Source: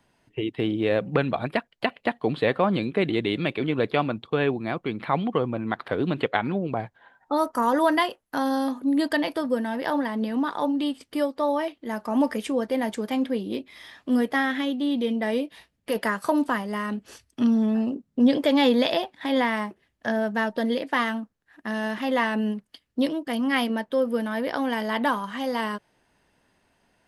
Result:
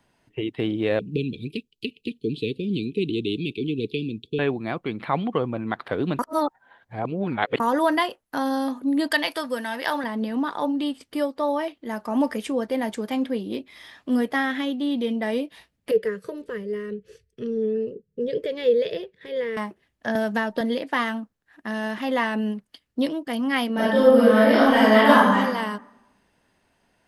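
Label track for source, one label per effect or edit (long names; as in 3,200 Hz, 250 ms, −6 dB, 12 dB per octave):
0.990000	4.390000	Chebyshev band-stop filter 440–2,500 Hz, order 5
6.190000	7.600000	reverse
9.110000	10.040000	tilt shelving filter lows −8 dB, about 760 Hz
15.910000	19.570000	drawn EQ curve 190 Hz 0 dB, 270 Hz −21 dB, 440 Hz +12 dB, 760 Hz −27 dB, 1,800 Hz −8 dB, 9,600 Hz −15 dB
20.150000	20.610000	multiband upward and downward compressor depth 100%
23.730000	25.360000	thrown reverb, RT60 0.99 s, DRR −10.5 dB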